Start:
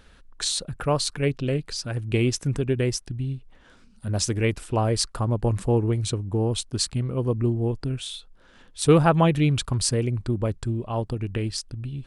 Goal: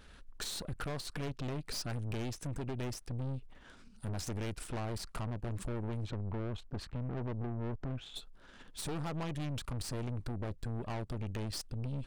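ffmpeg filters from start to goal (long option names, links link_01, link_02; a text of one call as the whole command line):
ffmpeg -i in.wav -filter_complex "[0:a]asplit=3[link_01][link_02][link_03];[link_01]afade=type=out:start_time=6.03:duration=0.02[link_04];[link_02]lowpass=1700,afade=type=in:start_time=6.03:duration=0.02,afade=type=out:start_time=8.15:duration=0.02[link_05];[link_03]afade=type=in:start_time=8.15:duration=0.02[link_06];[link_04][link_05][link_06]amix=inputs=3:normalize=0,deesser=0.65,bandreject=frequency=510:width=16,acompressor=threshold=-27dB:ratio=10,aeval=exprs='(tanh(70.8*val(0)+0.7)-tanh(0.7))/70.8':channel_layout=same,volume=1.5dB" out.wav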